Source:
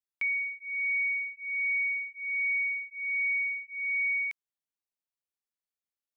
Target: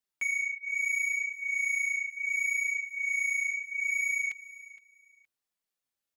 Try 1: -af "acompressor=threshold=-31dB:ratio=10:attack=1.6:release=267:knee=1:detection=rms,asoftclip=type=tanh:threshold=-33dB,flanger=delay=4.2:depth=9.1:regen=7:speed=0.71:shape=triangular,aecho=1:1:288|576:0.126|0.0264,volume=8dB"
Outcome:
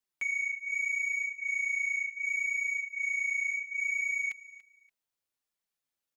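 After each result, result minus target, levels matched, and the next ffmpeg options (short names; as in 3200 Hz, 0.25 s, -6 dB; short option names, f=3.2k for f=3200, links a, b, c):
echo 0.179 s early; compressor: peak gain reduction +5 dB
-af "acompressor=threshold=-31dB:ratio=10:attack=1.6:release=267:knee=1:detection=rms,asoftclip=type=tanh:threshold=-33dB,flanger=delay=4.2:depth=9.1:regen=7:speed=0.71:shape=triangular,aecho=1:1:467|934:0.126|0.0264,volume=8dB"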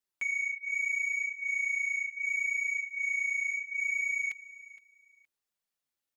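compressor: peak gain reduction +5 dB
-af "asoftclip=type=tanh:threshold=-33dB,flanger=delay=4.2:depth=9.1:regen=7:speed=0.71:shape=triangular,aecho=1:1:467|934:0.126|0.0264,volume=8dB"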